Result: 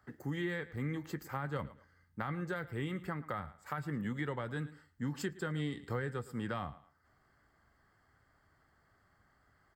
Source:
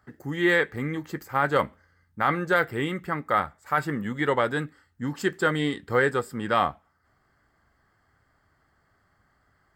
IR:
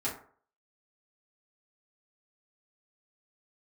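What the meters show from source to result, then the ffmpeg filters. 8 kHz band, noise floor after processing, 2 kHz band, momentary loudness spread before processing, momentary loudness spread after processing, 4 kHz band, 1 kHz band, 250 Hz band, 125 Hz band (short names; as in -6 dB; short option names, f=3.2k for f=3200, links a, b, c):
-9.5 dB, -72 dBFS, -16.5 dB, 9 LU, 5 LU, -14.5 dB, -17.0 dB, -9.5 dB, -5.5 dB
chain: -filter_complex "[0:a]aecho=1:1:110|220:0.0944|0.0142,acrossover=split=180[a][b];[b]acompressor=threshold=-35dB:ratio=5[c];[a][c]amix=inputs=2:normalize=0,volume=-3.5dB"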